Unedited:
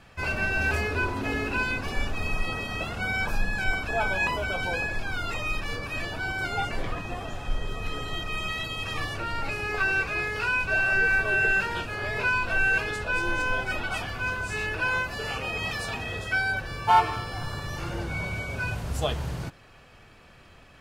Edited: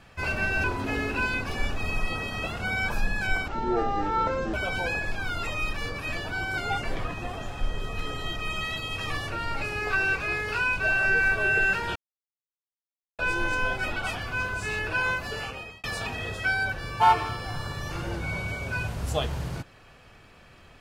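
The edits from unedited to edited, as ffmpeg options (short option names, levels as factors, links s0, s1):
-filter_complex "[0:a]asplit=7[s0][s1][s2][s3][s4][s5][s6];[s0]atrim=end=0.642[s7];[s1]atrim=start=1.008:end=3.854[s8];[s2]atrim=start=3.85:end=4.41,asetpts=PTS-STARTPTS,asetrate=23373,aresample=44100,atrim=end_sample=46596,asetpts=PTS-STARTPTS[s9];[s3]atrim=start=4.406:end=11.83,asetpts=PTS-STARTPTS,afade=t=out:st=7.42:d=0.004:c=hsin[s10];[s4]atrim=start=11.83:end=13.06,asetpts=PTS-STARTPTS,volume=0[s11];[s5]atrim=start=13.06:end=15.71,asetpts=PTS-STARTPTS,afade=t=in:d=0.004:c=hsin,afade=t=out:st=2.11:d=0.54[s12];[s6]atrim=start=15.71,asetpts=PTS-STARTPTS,afade=t=in:d=0.004:c=hsin[s13];[s7][s8]acrossfade=d=0.004:c1=hsin:c2=hsin[s14];[s14][s9]acrossfade=d=0.004:c1=hsin:c2=hsin[s15];[s10][s11][s12][s13]concat=n=4:v=0:a=1[s16];[s15][s16]acrossfade=d=0.004:c1=hsin:c2=hsin"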